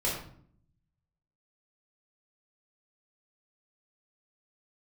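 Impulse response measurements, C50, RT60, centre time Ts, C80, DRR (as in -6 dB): 3.5 dB, 0.60 s, 42 ms, 7.0 dB, -6.0 dB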